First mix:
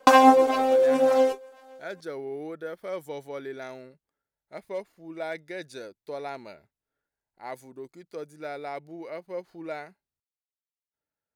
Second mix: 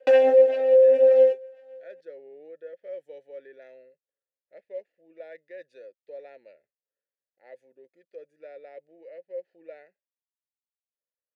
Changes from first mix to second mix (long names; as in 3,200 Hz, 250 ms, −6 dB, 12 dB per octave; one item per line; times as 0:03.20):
background +5.0 dB
master: add formant filter e